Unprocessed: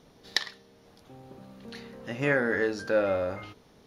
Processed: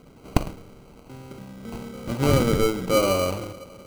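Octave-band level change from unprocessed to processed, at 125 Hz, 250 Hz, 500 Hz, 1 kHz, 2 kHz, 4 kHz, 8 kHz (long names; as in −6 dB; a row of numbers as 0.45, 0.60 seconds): +13.5 dB, +8.5 dB, +4.5 dB, +8.5 dB, −4.0 dB, +3.0 dB, can't be measured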